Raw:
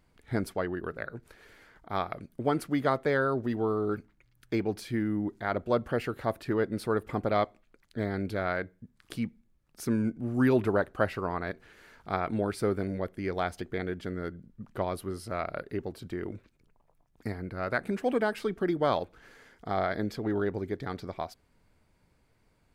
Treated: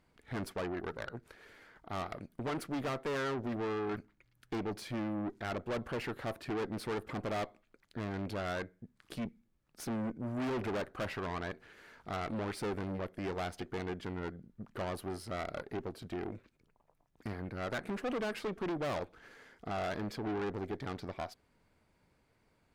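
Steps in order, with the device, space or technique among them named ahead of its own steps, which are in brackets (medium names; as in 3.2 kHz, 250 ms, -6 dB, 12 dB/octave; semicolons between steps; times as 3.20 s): tube preamp driven hard (valve stage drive 35 dB, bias 0.7; bass shelf 120 Hz -7 dB; treble shelf 6.3 kHz -5.5 dB); trim +3 dB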